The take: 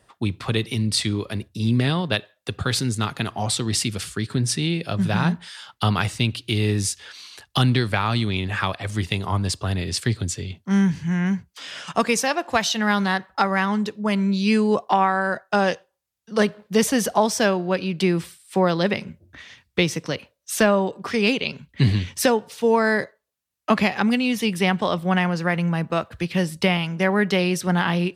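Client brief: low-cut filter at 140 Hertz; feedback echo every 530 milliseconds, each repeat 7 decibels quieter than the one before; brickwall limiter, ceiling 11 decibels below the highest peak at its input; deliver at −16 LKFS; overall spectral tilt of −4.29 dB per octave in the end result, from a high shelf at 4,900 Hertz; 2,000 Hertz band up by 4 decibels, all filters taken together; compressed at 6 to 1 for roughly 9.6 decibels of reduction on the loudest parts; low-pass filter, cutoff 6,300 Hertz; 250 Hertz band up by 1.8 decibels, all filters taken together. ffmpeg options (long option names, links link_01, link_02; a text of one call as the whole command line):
ffmpeg -i in.wav -af "highpass=140,lowpass=6300,equalizer=frequency=250:width_type=o:gain=3.5,equalizer=frequency=2000:width_type=o:gain=6,highshelf=frequency=4900:gain=-5.5,acompressor=threshold=-22dB:ratio=6,alimiter=limit=-18.5dB:level=0:latency=1,aecho=1:1:530|1060|1590|2120|2650:0.447|0.201|0.0905|0.0407|0.0183,volume=12.5dB" out.wav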